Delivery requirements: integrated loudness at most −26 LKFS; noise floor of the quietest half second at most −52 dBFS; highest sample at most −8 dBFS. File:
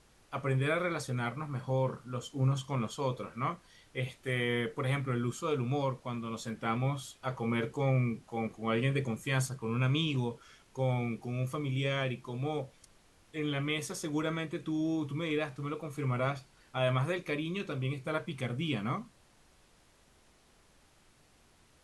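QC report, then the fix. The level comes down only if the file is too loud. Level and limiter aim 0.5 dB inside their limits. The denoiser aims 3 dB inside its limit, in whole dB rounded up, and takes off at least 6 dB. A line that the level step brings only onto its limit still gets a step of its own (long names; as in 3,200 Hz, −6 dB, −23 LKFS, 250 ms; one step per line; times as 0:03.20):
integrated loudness −34.0 LKFS: in spec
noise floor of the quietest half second −64 dBFS: in spec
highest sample −17.5 dBFS: in spec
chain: no processing needed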